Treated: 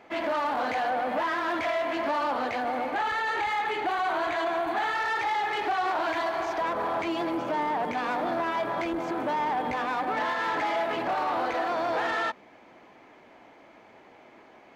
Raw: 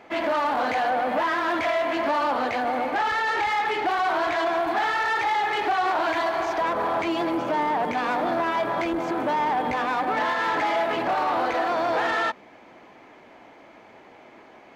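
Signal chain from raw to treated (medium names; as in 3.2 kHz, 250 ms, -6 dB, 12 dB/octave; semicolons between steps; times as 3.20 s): 2.94–4.95 s: band-stop 5.3 kHz, Q 5.5; trim -4 dB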